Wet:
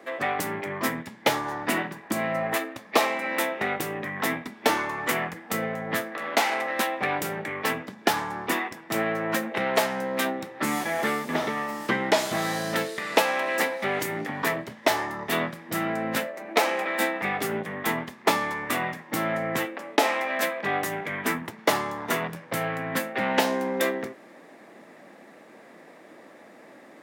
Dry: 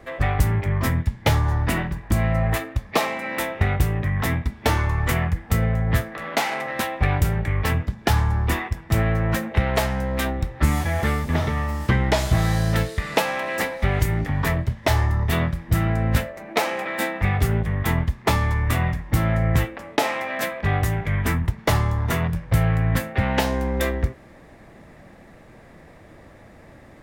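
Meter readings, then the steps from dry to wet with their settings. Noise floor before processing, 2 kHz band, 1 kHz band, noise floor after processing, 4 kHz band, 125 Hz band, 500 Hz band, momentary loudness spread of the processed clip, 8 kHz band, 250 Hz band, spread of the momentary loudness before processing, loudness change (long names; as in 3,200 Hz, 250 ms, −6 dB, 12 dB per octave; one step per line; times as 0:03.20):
−47 dBFS, 0.0 dB, 0.0 dB, −50 dBFS, 0.0 dB, −20.0 dB, 0.0 dB, 6 LU, 0.0 dB, −4.0 dB, 4 LU, −4.0 dB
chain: high-pass filter 230 Hz 24 dB per octave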